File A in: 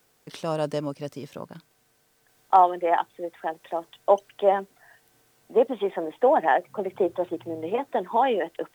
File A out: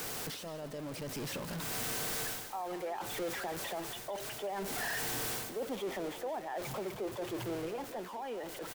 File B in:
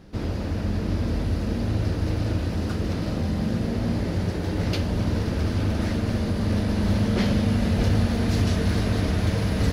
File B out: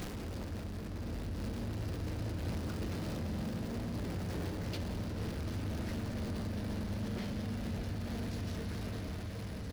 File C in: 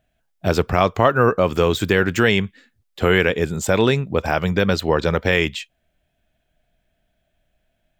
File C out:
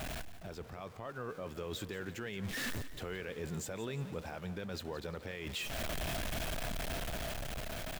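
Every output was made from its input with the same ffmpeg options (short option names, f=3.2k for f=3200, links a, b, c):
-filter_complex "[0:a]aeval=exprs='val(0)+0.5*0.0473*sgn(val(0))':c=same,areverse,acompressor=threshold=-26dB:ratio=16,areverse,alimiter=level_in=2.5dB:limit=-24dB:level=0:latency=1:release=240,volume=-2.5dB,dynaudnorm=f=270:g=9:m=3.5dB,asplit=5[a][b][c][d][e];[b]adelay=174,afreqshift=32,volume=-14.5dB[f];[c]adelay=348,afreqshift=64,volume=-22dB[g];[d]adelay=522,afreqshift=96,volume=-29.6dB[h];[e]adelay=696,afreqshift=128,volume=-37.1dB[i];[a][f][g][h][i]amix=inputs=5:normalize=0,volume=-7.5dB"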